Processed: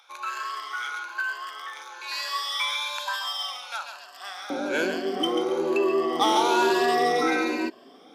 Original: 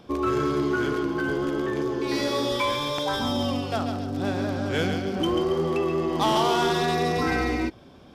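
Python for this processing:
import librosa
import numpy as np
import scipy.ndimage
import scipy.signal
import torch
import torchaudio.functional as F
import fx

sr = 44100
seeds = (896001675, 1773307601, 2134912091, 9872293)

y = fx.spec_ripple(x, sr, per_octave=1.4, drift_hz=1.1, depth_db=11)
y = fx.highpass(y, sr, hz=fx.steps((0.0, 1000.0), (4.5, 270.0)), slope=24)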